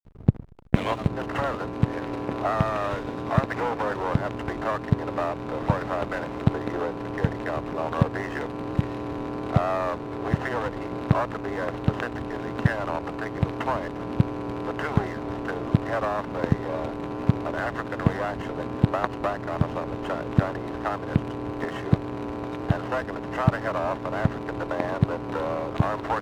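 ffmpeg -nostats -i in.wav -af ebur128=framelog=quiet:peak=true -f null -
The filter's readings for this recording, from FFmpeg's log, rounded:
Integrated loudness:
  I:         -27.7 LUFS
  Threshold: -37.7 LUFS
Loudness range:
  LRA:         1.1 LU
  Threshold: -47.7 LUFS
  LRA low:   -28.3 LUFS
  LRA high:  -27.2 LUFS
True peak:
  Peak:       -3.2 dBFS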